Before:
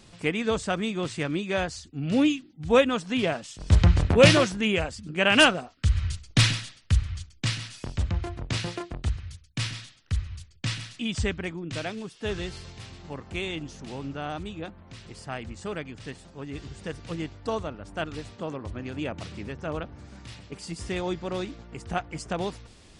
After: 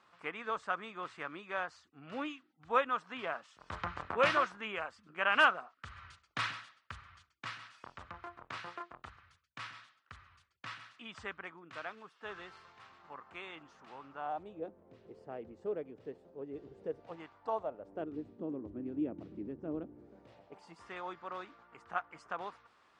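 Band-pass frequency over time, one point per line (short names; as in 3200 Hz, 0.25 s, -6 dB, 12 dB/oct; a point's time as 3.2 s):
band-pass, Q 2.7
14.09 s 1200 Hz
14.65 s 450 Hz
16.93 s 450 Hz
17.27 s 1200 Hz
18.19 s 310 Hz
19.86 s 310 Hz
20.89 s 1200 Hz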